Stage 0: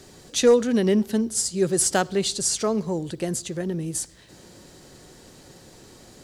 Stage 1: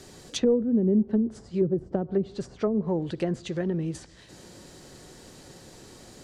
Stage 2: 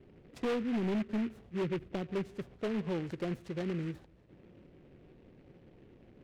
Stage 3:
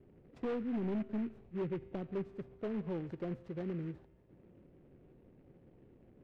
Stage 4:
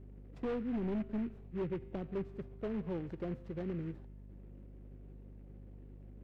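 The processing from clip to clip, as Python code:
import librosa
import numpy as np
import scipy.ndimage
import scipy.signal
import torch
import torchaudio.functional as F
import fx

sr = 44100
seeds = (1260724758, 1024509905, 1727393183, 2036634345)

y1 = fx.env_lowpass_down(x, sr, base_hz=340.0, full_db=-18.0)
y2 = fx.env_lowpass(y1, sr, base_hz=420.0, full_db=-20.5)
y2 = np.clip(10.0 ** (22.0 / 20.0) * y2, -1.0, 1.0) / 10.0 ** (22.0 / 20.0)
y2 = fx.noise_mod_delay(y2, sr, seeds[0], noise_hz=1800.0, depth_ms=0.07)
y2 = y2 * 10.0 ** (-7.0 / 20.0)
y3 = fx.lowpass(y2, sr, hz=1100.0, slope=6)
y3 = fx.comb_fb(y3, sr, f0_hz=130.0, decay_s=1.6, harmonics='all', damping=0.0, mix_pct=50)
y3 = y3 * 10.0 ** (2.5 / 20.0)
y4 = fx.add_hum(y3, sr, base_hz=50, snr_db=11)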